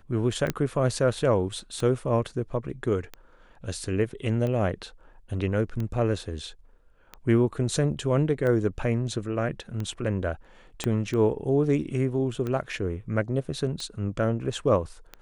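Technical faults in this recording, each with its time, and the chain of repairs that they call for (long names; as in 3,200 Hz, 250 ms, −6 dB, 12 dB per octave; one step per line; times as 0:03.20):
scratch tick 45 rpm −20 dBFS
0:00.50: click −12 dBFS
0:10.84: click −13 dBFS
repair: click removal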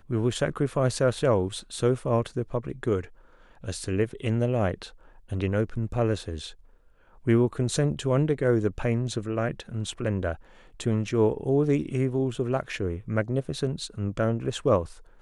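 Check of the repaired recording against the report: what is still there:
0:00.50: click
0:10.84: click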